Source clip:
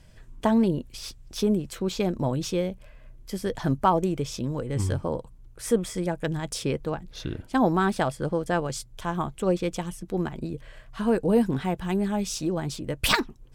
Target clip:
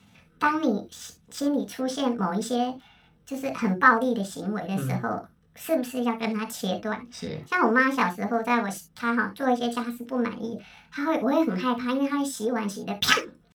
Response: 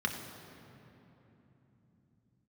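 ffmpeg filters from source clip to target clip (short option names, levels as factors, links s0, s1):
-filter_complex "[0:a]highpass=f=200:p=1,asetrate=60591,aresample=44100,atempo=0.727827[s0];[1:a]atrim=start_sample=2205,atrim=end_sample=3528[s1];[s0][s1]afir=irnorm=-1:irlink=0,volume=0.75"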